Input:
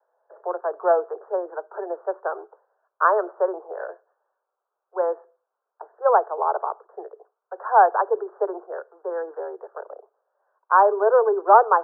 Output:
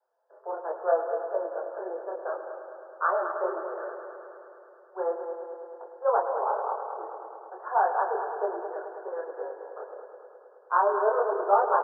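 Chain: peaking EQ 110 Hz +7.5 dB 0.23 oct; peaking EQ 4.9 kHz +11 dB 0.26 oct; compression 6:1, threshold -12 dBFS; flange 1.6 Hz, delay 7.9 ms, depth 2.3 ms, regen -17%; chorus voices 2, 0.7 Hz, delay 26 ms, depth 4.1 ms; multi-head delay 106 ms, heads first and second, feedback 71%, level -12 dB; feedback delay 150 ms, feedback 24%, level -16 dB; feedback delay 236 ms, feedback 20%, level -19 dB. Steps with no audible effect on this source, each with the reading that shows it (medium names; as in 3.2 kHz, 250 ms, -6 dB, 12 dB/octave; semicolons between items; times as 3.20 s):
peaking EQ 110 Hz: input has nothing below 320 Hz; peaking EQ 4.9 kHz: input has nothing above 1.8 kHz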